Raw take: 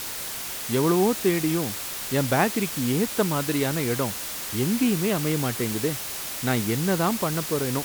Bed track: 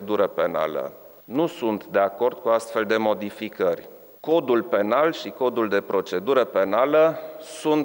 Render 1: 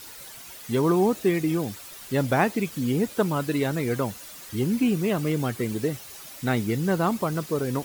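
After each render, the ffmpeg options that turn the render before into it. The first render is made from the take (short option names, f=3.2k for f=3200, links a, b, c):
-af "afftdn=nr=12:nf=-33"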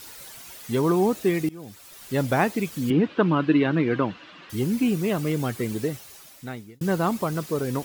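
-filter_complex "[0:a]asettb=1/sr,asplit=3[a][b][c];[a]atrim=end=2.904[d];[b]atrim=start=2.9:end=4.5,asetpts=PTS-STARTPTS,afade=t=in:d=0.004:c=qsin,afade=t=out:st=1.596:d=0.004:c=qsin,highpass=110,equalizer=f=170:t=q:w=4:g=6,equalizer=f=310:t=q:w=4:g=10,equalizer=f=1.1k:t=q:w=4:g=6,equalizer=f=1.6k:t=q:w=4:g=5,equalizer=f=2.8k:t=q:w=4:g=6,lowpass=f=3.7k:w=0.5412,lowpass=f=3.7k:w=1.3066[e];[c]atrim=start=4.496[f];[d][e]acrossfade=d=0.004:c1=hsin:c2=qsin[g];[g][f]acrossfade=d=0.004:c1=qsin:c2=hsin,asplit=3[h][i][j];[h]atrim=end=1.49,asetpts=PTS-STARTPTS,afade=t=out:st=1.486:d=0.004:c=hsin:silence=0.0794328[k];[i]atrim=start=1.49:end=6.81,asetpts=PTS-STARTPTS,afade=t=in:d=0.7:silence=0.0794328,afade=t=out:st=4.3:d=1.02[l];[j]atrim=start=6.81,asetpts=PTS-STARTPTS,afade=t=in:d=0.004:c=hsin[m];[k][l][m]concat=n=3:v=0:a=1"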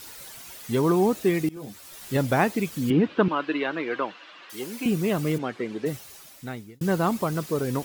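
-filter_complex "[0:a]asettb=1/sr,asplit=3[a][b][c];[a]atrim=end=1.554[d];[b]atrim=start=1.55:end=2.17,asetpts=PTS-STARTPTS,afade=t=in:d=0.004:c=qsin,afade=t=out:st=0.616:d=0.004:c=qsin,asplit=2[e][f];[f]adelay=14,volume=-2.5dB[g];[e][g]amix=inputs=2:normalize=0,atrim=end_sample=27342[h];[c]atrim=start=2.166[i];[d][h]acrossfade=d=0.004:c1=hsin:c2=qsin[j];[j][i]acrossfade=d=0.004:c1=qsin:c2=hsin,asettb=1/sr,asplit=3[k][l][m];[k]atrim=end=3.284[n];[l]atrim=start=3.28:end=4.86,asetpts=PTS-STARTPTS,afade=t=in:d=0.004:c=qsin,afade=t=out:st=1.576:d=0.004:c=qsin,highpass=490[o];[m]atrim=start=4.856[p];[n][o]acrossfade=d=0.004:c1=hsin:c2=qsin[q];[q][p]acrossfade=d=0.004:c1=qsin:c2=hsin,asplit=3[r][s][t];[r]afade=t=out:st=5.37:d=0.02[u];[s]highpass=270,lowpass=3.2k,afade=t=in:st=5.37:d=0.02,afade=t=out:st=5.85:d=0.02[v];[t]afade=t=in:st=5.85:d=0.02[w];[u][v][w]amix=inputs=3:normalize=0"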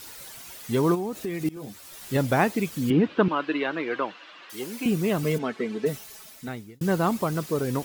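-filter_complex "[0:a]asplit=3[a][b][c];[a]afade=t=out:st=0.94:d=0.02[d];[b]acompressor=threshold=-27dB:ratio=6:attack=3.2:release=140:knee=1:detection=peak,afade=t=in:st=0.94:d=0.02,afade=t=out:st=1.44:d=0.02[e];[c]afade=t=in:st=1.44:d=0.02[f];[d][e][f]amix=inputs=3:normalize=0,asettb=1/sr,asplit=3[g][h][i];[g]atrim=end=5.234[j];[h]atrim=start=5.23:end=6.48,asetpts=PTS-STARTPTS,afade=t=in:d=0.004:c=qsin,afade=t=out:st=1.246:d=0.004:c=qsin,aecho=1:1:4.6:0.6,atrim=end_sample=55125[k];[i]atrim=start=6.476[l];[j][k]acrossfade=d=0.004:c1=hsin:c2=qsin[m];[m][l]acrossfade=d=0.004:c1=qsin:c2=hsin"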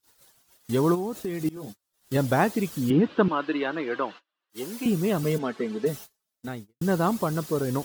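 -af "agate=range=-37dB:threshold=-39dB:ratio=16:detection=peak,equalizer=f=2.3k:t=o:w=0.57:g=-5.5"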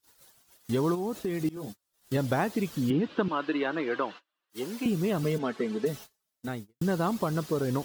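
-filter_complex "[0:a]acrossover=split=2700|5500[a][b][c];[a]acompressor=threshold=-24dB:ratio=4[d];[b]acompressor=threshold=-45dB:ratio=4[e];[c]acompressor=threshold=-49dB:ratio=4[f];[d][e][f]amix=inputs=3:normalize=0"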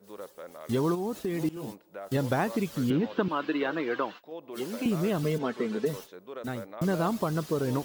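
-filter_complex "[1:a]volume=-21.5dB[a];[0:a][a]amix=inputs=2:normalize=0"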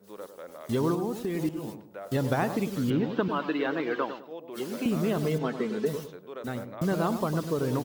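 -filter_complex "[0:a]asplit=2[a][b];[b]adelay=103,lowpass=f=870:p=1,volume=-7.5dB,asplit=2[c][d];[d]adelay=103,lowpass=f=870:p=1,volume=0.36,asplit=2[e][f];[f]adelay=103,lowpass=f=870:p=1,volume=0.36,asplit=2[g][h];[h]adelay=103,lowpass=f=870:p=1,volume=0.36[i];[a][c][e][g][i]amix=inputs=5:normalize=0"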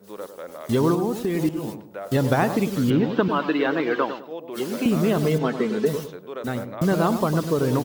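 -af "volume=6.5dB"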